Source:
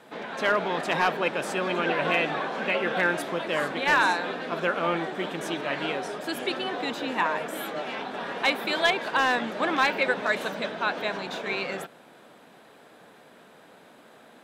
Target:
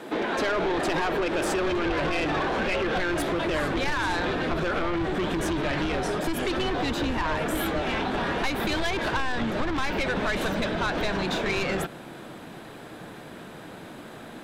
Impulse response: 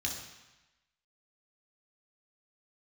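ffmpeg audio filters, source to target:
-af "equalizer=f=330:t=o:w=0.57:g=11.5,alimiter=limit=-16.5dB:level=0:latency=1,asoftclip=type=tanh:threshold=-26dB,asubboost=boost=8.5:cutoff=110,acompressor=threshold=-32dB:ratio=6,volume=9dB"

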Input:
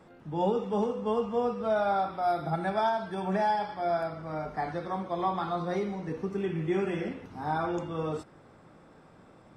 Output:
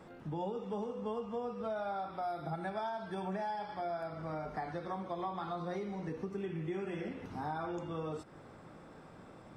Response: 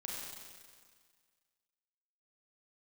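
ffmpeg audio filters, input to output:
-af "acompressor=threshold=-39dB:ratio=4,volume=1.5dB"

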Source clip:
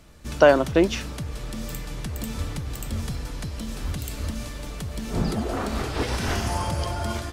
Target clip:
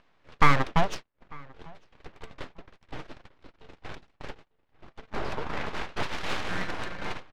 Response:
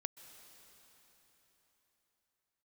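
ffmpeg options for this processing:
-filter_complex "[0:a]agate=range=-57dB:threshold=-26dB:ratio=16:detection=peak,lowshelf=f=430:g=-7,asplit=2[a][b];[b]aeval=exprs='0.188*(abs(mod(val(0)/0.188+3,4)-2)-1)':c=same,volume=-8dB[c];[a][c]amix=inputs=2:normalize=0,acompressor=mode=upward:threshold=-22dB:ratio=2.5,acrossover=split=160 3500:gain=0.224 1 0.141[d][e][f];[d][e][f]amix=inputs=3:normalize=0,aeval=exprs='abs(val(0))':c=same,adynamicsmooth=sensitivity=7.5:basefreq=4.4k,asplit=2[g][h];[h]adelay=897,lowpass=f=2.4k:p=1,volume=-24dB,asplit=2[i][j];[j]adelay=897,lowpass=f=2.4k:p=1,volume=0.27[k];[g][i][k]amix=inputs=3:normalize=0"

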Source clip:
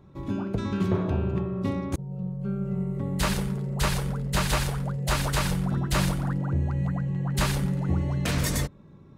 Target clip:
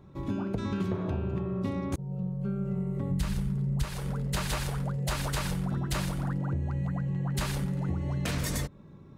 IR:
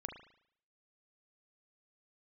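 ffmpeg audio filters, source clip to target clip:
-filter_complex "[0:a]asplit=3[a][b][c];[a]afade=t=out:st=3.1:d=0.02[d];[b]asubboost=boost=4.5:cutoff=230,afade=t=in:st=3.1:d=0.02,afade=t=out:st=3.83:d=0.02[e];[c]afade=t=in:st=3.83:d=0.02[f];[d][e][f]amix=inputs=3:normalize=0,acompressor=threshold=-27dB:ratio=6"

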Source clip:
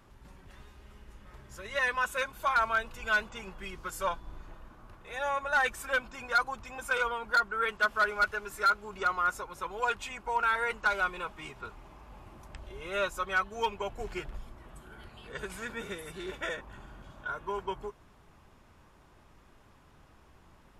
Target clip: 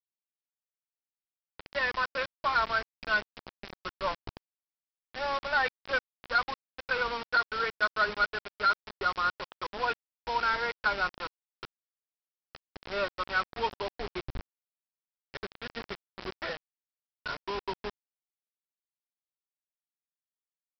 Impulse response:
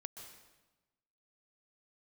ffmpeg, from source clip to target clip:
-af "adynamicsmooth=sensitivity=3:basefreq=1.3k,aresample=11025,acrusher=bits=5:mix=0:aa=0.000001,aresample=44100"

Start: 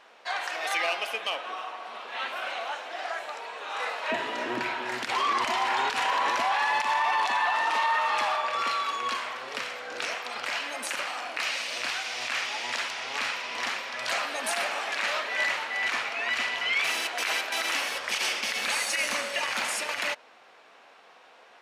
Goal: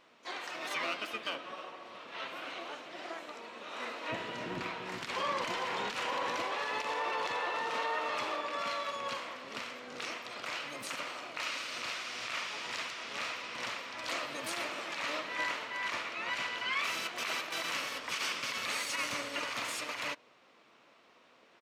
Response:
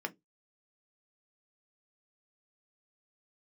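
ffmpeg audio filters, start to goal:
-filter_complex "[0:a]equalizer=f=800:t=o:w=0.33:g=-10,equalizer=f=1.6k:t=o:w=0.33:g=-7,equalizer=f=10k:t=o:w=0.33:g=-6,asplit=4[a][b][c][d];[b]asetrate=22050,aresample=44100,atempo=2,volume=-4dB[e];[c]asetrate=35002,aresample=44100,atempo=1.25992,volume=-10dB[f];[d]asetrate=66075,aresample=44100,atempo=0.66742,volume=-15dB[g];[a][e][f][g]amix=inputs=4:normalize=0,volume=-7.5dB"

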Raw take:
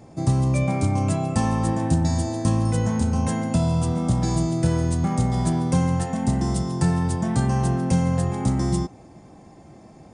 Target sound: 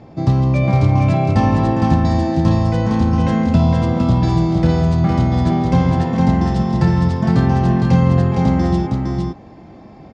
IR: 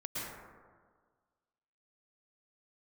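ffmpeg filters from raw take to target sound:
-af "lowpass=f=4.5k:w=0.5412,lowpass=f=4.5k:w=1.3066,aecho=1:1:460:0.668,volume=5.5dB"

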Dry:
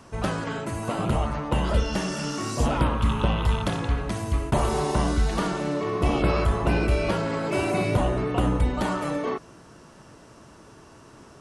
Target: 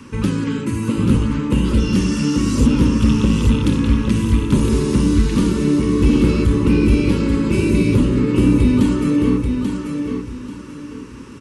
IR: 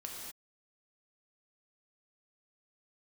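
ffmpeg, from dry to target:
-filter_complex "[0:a]equalizer=f=100:t=o:w=0.67:g=5,equalizer=f=250:t=o:w=0.67:g=12,equalizer=f=2.5k:t=o:w=0.67:g=7,acrossover=split=490|3800[a][b][c];[b]acompressor=threshold=-37dB:ratio=6[d];[a][d][c]amix=inputs=3:normalize=0,asoftclip=type=hard:threshold=-13dB,asuperstop=centerf=690:order=4:qfactor=1.9,aecho=1:1:837|1674|2511|3348:0.531|0.154|0.0446|0.0129,volume=5dB"

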